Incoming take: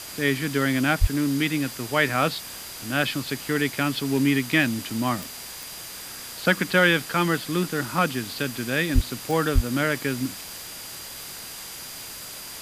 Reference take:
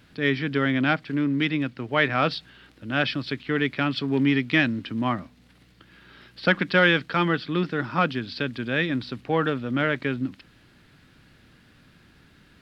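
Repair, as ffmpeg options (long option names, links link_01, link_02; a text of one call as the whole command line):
ffmpeg -i in.wav -filter_complex "[0:a]adeclick=threshold=4,bandreject=frequency=4800:width=30,asplit=3[link_01][link_02][link_03];[link_01]afade=type=out:start_time=1:duration=0.02[link_04];[link_02]highpass=frequency=140:width=0.5412,highpass=frequency=140:width=1.3066,afade=type=in:start_time=1:duration=0.02,afade=type=out:start_time=1.12:duration=0.02[link_05];[link_03]afade=type=in:start_time=1.12:duration=0.02[link_06];[link_04][link_05][link_06]amix=inputs=3:normalize=0,asplit=3[link_07][link_08][link_09];[link_07]afade=type=out:start_time=8.94:duration=0.02[link_10];[link_08]highpass=frequency=140:width=0.5412,highpass=frequency=140:width=1.3066,afade=type=in:start_time=8.94:duration=0.02,afade=type=out:start_time=9.06:duration=0.02[link_11];[link_09]afade=type=in:start_time=9.06:duration=0.02[link_12];[link_10][link_11][link_12]amix=inputs=3:normalize=0,asplit=3[link_13][link_14][link_15];[link_13]afade=type=out:start_time=9.54:duration=0.02[link_16];[link_14]highpass=frequency=140:width=0.5412,highpass=frequency=140:width=1.3066,afade=type=in:start_time=9.54:duration=0.02,afade=type=out:start_time=9.66:duration=0.02[link_17];[link_15]afade=type=in:start_time=9.66:duration=0.02[link_18];[link_16][link_17][link_18]amix=inputs=3:normalize=0,afwtdn=0.014" out.wav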